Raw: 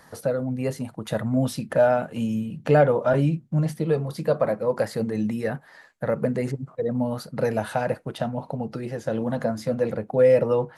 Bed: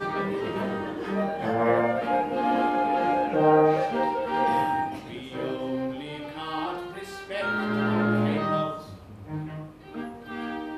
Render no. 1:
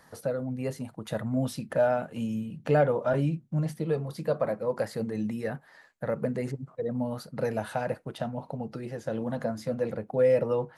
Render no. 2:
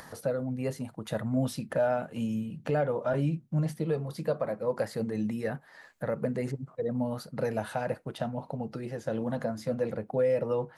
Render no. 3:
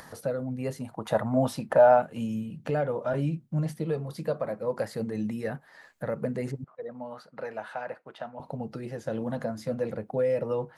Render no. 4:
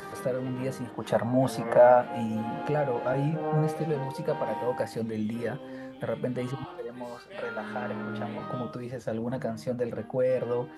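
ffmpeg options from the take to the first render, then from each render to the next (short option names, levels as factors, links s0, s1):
-af "volume=0.531"
-af "acompressor=mode=upward:threshold=0.01:ratio=2.5,alimiter=limit=0.119:level=0:latency=1:release=268"
-filter_complex "[0:a]asettb=1/sr,asplit=3[s0][s1][s2];[s0]atrim=end=0.914[s3];[s1]atrim=start=0.91:end=2.02,asetpts=PTS-STARTPTS,afade=t=in:d=0.004:c=qsin,afade=t=out:st=1.106:d=0.004:c=qsin,equalizer=f=850:t=o:w=1.5:g=13[s4];[s2]atrim=start=2.016[s5];[s3][s4]acrossfade=d=0.004:c1=hsin:c2=qsin[s6];[s6][s5]acrossfade=d=0.004:c1=qsin:c2=hsin,asettb=1/sr,asplit=3[s7][s8][s9];[s7]atrim=end=6.644[s10];[s8]atrim=start=6.64:end=8.4,asetpts=PTS-STARTPTS,afade=t=in:d=0.004:c=qsin,afade=t=out:st=1.756:d=0.004:c=qsin,bandpass=f=1300:t=q:w=0.75[s11];[s9]atrim=start=8.396[s12];[s10][s11]acrossfade=d=0.004:c1=hsin:c2=qsin[s13];[s13][s12]acrossfade=d=0.004:c1=qsin:c2=hsin"
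-filter_complex "[1:a]volume=0.266[s0];[0:a][s0]amix=inputs=2:normalize=0"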